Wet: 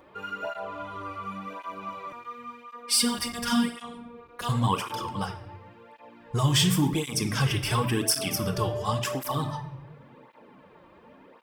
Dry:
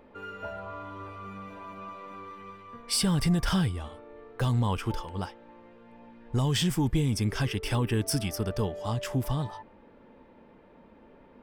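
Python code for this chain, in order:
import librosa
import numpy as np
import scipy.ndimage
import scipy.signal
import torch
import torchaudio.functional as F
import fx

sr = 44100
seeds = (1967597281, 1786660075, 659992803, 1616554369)

y = fx.tilt_eq(x, sr, slope=1.5)
y = fx.room_shoebox(y, sr, seeds[0], volume_m3=300.0, walls='mixed', distance_m=0.54)
y = fx.robotise(y, sr, hz=238.0, at=(2.12, 4.49))
y = fx.peak_eq(y, sr, hz=1100.0, db=7.0, octaves=0.22)
y = fx.flanger_cancel(y, sr, hz=0.92, depth_ms=4.8)
y = F.gain(torch.from_numpy(y), 5.5).numpy()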